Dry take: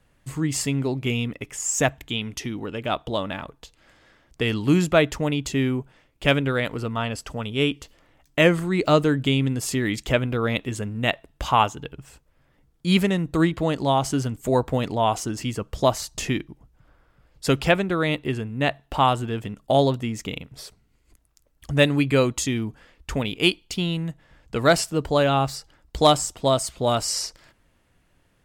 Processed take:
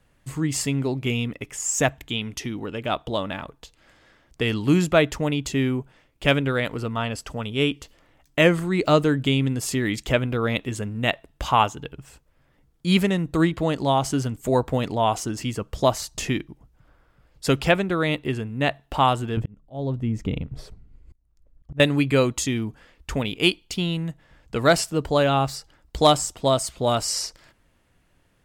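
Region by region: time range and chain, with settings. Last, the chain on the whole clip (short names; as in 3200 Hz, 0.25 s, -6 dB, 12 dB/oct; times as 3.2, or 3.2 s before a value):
19.37–21.8 tilt -3.5 dB/oct + auto swell 0.726 s
whole clip: dry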